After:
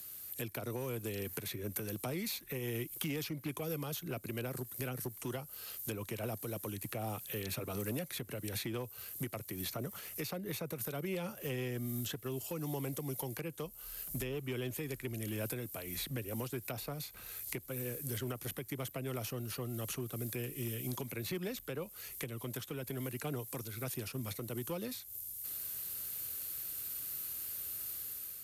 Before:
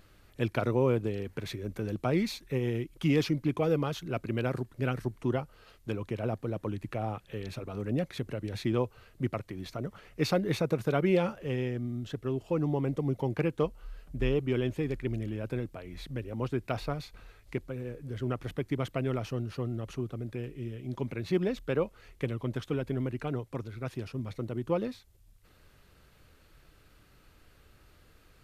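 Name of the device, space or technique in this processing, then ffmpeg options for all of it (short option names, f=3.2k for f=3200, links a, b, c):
FM broadcast chain: -filter_complex "[0:a]highpass=75,dynaudnorm=f=260:g=5:m=6dB,acrossover=split=160|380|830|2800[a][b][c][d][e];[a]acompressor=threshold=-33dB:ratio=4[f];[b]acompressor=threshold=-35dB:ratio=4[g];[c]acompressor=threshold=-32dB:ratio=4[h];[d]acompressor=threshold=-42dB:ratio=4[i];[e]acompressor=threshold=-58dB:ratio=4[j];[f][g][h][i][j]amix=inputs=5:normalize=0,aemphasis=mode=production:type=75fm,alimiter=level_in=0.5dB:limit=-24dB:level=0:latency=1:release=480,volume=-0.5dB,asoftclip=type=hard:threshold=-26.5dB,lowpass=f=15k:w=0.5412,lowpass=f=15k:w=1.3066,aemphasis=mode=production:type=75fm,volume=-4dB"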